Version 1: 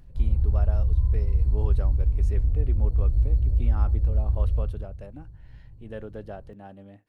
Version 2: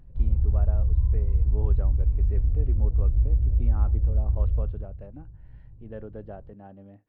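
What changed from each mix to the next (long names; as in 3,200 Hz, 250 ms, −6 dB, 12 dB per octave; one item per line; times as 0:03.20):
master: add head-to-tape spacing loss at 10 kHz 38 dB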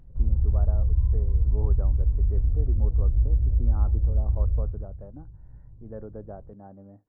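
speech: add low-pass filter 1,400 Hz 24 dB per octave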